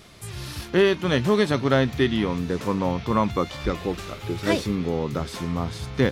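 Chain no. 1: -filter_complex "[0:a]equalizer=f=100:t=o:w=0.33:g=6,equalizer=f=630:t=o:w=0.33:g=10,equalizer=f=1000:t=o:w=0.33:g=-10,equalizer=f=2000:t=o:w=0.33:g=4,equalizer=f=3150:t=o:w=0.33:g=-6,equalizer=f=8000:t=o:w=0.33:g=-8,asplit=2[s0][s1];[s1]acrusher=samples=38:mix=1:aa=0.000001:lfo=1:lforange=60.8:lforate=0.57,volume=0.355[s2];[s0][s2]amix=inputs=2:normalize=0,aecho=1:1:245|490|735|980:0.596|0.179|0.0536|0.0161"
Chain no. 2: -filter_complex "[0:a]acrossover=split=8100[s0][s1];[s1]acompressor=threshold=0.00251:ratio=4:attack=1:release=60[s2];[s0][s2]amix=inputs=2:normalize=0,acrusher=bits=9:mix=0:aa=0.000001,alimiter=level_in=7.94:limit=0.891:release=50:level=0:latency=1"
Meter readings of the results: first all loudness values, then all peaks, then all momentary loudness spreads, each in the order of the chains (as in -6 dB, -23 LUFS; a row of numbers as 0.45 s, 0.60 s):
-20.0 LUFS, -12.0 LUFS; -2.5 dBFS, -1.0 dBFS; 9 LU, 5 LU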